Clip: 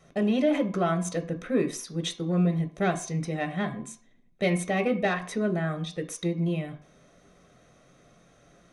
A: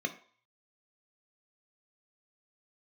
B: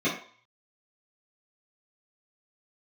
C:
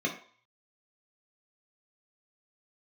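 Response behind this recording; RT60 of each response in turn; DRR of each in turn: A; 0.50, 0.50, 0.50 seconds; 5.5, −11.0, −1.0 decibels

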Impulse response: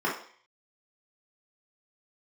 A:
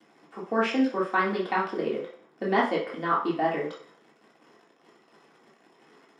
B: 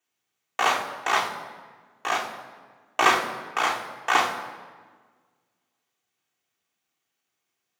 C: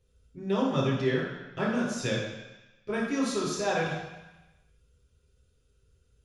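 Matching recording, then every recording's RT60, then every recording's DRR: A; 0.50, 1.5, 1.0 seconds; −6.5, −1.5, −5.5 decibels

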